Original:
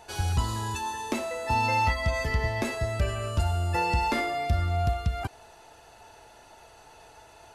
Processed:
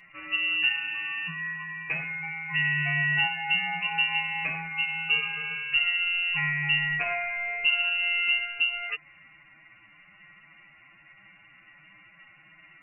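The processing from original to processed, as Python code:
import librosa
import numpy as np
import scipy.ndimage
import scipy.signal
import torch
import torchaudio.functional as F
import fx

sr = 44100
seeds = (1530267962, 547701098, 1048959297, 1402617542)

y = fx.freq_invert(x, sr, carrier_hz=2800)
y = fx.stretch_vocoder(y, sr, factor=1.7)
y = y * 10.0 ** (-1.5 / 20.0)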